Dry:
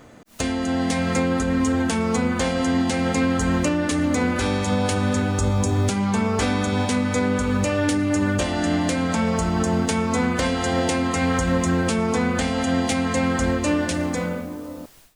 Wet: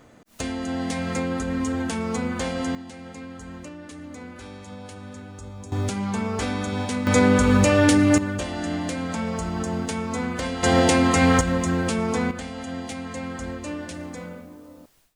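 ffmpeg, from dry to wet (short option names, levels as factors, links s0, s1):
-af "asetnsamples=n=441:p=0,asendcmd='2.75 volume volume -18dB;5.72 volume volume -5dB;7.07 volume volume 4.5dB;8.18 volume volume -6dB;10.63 volume volume 4dB;11.41 volume volume -2.5dB;12.31 volume volume -11dB',volume=0.562"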